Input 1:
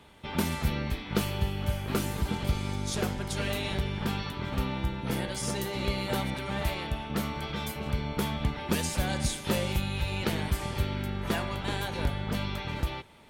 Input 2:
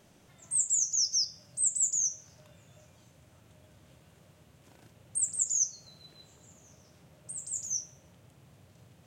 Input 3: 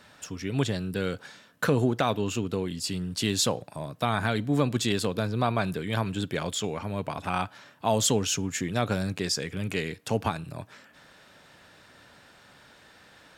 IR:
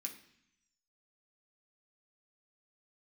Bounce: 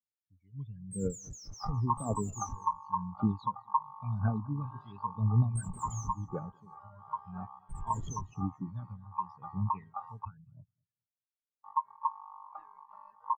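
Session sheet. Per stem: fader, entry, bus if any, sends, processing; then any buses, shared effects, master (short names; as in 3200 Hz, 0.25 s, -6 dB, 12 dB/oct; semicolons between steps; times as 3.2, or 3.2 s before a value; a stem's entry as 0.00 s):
-9.5 dB, 1.25 s, muted 10.25–11.64, no send, no echo send, low shelf 370 Hz +8 dB; ring modulator 1000 Hz
+1.5 dB, 0.40 s, no send, echo send -9 dB, Schmitt trigger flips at -37 dBFS
-13.5 dB, 0.00 s, no send, echo send -13 dB, LPF 4200 Hz 12 dB/oct; phaser 0.94 Hz, delay 1.1 ms, feedback 73%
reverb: off
echo: feedback echo 0.21 s, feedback 46%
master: spectral expander 2.5:1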